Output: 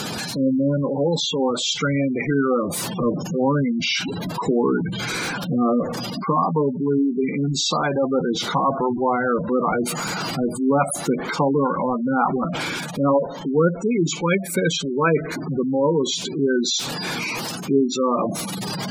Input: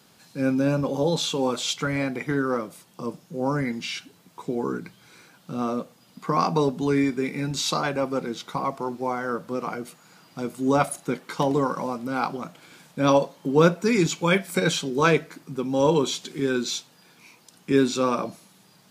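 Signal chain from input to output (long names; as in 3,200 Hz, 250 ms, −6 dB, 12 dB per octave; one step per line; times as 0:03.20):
converter with a step at zero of −25.5 dBFS
gate on every frequency bin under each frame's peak −15 dB strong
speech leveller within 4 dB 0.5 s
level +2.5 dB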